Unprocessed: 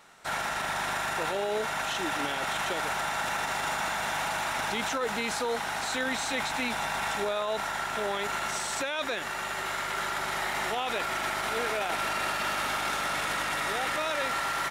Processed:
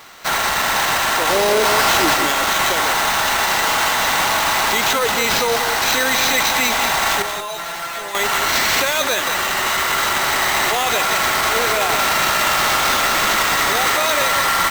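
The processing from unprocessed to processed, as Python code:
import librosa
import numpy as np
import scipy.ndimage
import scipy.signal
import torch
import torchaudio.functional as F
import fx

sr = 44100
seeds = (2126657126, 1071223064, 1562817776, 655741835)

p1 = fx.halfwave_hold(x, sr, at=(1.29, 2.14))
p2 = fx.bass_treble(p1, sr, bass_db=-9, treble_db=8)
p3 = fx.small_body(p2, sr, hz=(1100.0, 2000.0, 3900.0), ring_ms=45, db=8)
p4 = fx.fold_sine(p3, sr, drive_db=12, ceiling_db=-8.5)
p5 = p3 + (p4 * librosa.db_to_amplitude(-6.5))
p6 = fx.sample_hold(p5, sr, seeds[0], rate_hz=10000.0, jitter_pct=0)
p7 = fx.comb_fb(p6, sr, f0_hz=170.0, decay_s=0.16, harmonics='all', damping=0.0, mix_pct=90, at=(7.22, 8.15))
y = p7 + fx.echo_single(p7, sr, ms=183, db=-8.0, dry=0)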